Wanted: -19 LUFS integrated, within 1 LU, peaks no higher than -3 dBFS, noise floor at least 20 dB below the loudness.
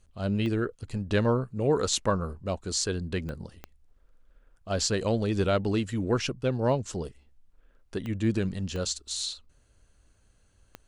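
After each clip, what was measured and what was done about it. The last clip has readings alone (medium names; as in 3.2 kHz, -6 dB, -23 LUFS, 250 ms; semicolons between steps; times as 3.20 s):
clicks found 6; loudness -29.0 LUFS; peak level -11.5 dBFS; loudness target -19.0 LUFS
-> de-click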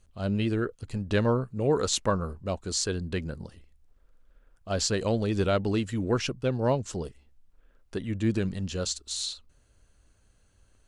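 clicks found 0; loudness -29.0 LUFS; peak level -11.5 dBFS; loudness target -19.0 LUFS
-> trim +10 dB; peak limiter -3 dBFS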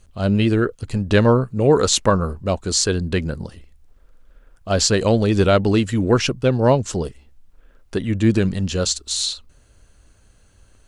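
loudness -19.0 LUFS; peak level -3.0 dBFS; noise floor -54 dBFS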